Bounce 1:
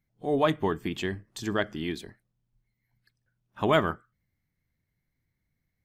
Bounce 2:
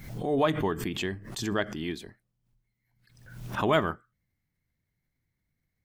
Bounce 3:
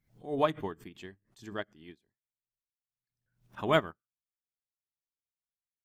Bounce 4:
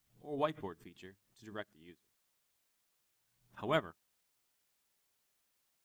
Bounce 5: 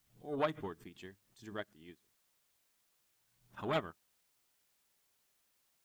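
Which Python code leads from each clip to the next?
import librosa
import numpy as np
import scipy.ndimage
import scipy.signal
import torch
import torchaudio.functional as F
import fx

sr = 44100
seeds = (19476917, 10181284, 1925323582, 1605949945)

y1 = fx.pre_swell(x, sr, db_per_s=67.0)
y1 = y1 * librosa.db_to_amplitude(-1.5)
y2 = fx.upward_expand(y1, sr, threshold_db=-43.0, expansion=2.5)
y3 = fx.quant_dither(y2, sr, seeds[0], bits=12, dither='triangular')
y3 = y3 * librosa.db_to_amplitude(-7.0)
y4 = fx.transformer_sat(y3, sr, knee_hz=1400.0)
y4 = y4 * librosa.db_to_amplitude(2.5)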